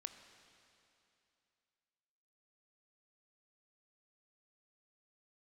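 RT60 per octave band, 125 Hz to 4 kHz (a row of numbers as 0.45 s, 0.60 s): 2.8 s, 2.8 s, 2.8 s, 2.8 s, 2.8 s, 2.7 s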